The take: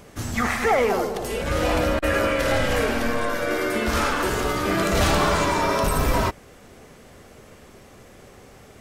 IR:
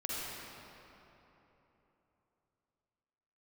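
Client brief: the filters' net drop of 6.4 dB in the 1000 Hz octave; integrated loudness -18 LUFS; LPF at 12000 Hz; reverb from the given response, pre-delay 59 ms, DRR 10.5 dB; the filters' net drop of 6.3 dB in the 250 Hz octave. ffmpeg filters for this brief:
-filter_complex "[0:a]lowpass=12k,equalizer=f=250:t=o:g=-8,equalizer=f=1k:t=o:g=-8,asplit=2[a][b];[1:a]atrim=start_sample=2205,adelay=59[c];[b][c]afir=irnorm=-1:irlink=0,volume=-14.5dB[d];[a][d]amix=inputs=2:normalize=0,volume=7.5dB"

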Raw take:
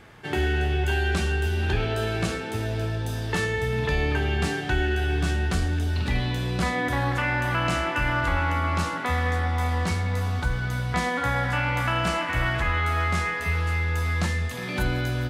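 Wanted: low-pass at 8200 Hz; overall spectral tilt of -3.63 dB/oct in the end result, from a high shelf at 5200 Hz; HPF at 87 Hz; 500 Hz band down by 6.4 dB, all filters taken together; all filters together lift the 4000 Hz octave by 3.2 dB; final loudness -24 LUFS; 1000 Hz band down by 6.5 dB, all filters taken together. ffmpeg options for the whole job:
-af "highpass=87,lowpass=8.2k,equalizer=f=500:t=o:g=-7,equalizer=f=1k:t=o:g=-7,equalizer=f=4k:t=o:g=7.5,highshelf=f=5.2k:g=-6,volume=4dB"

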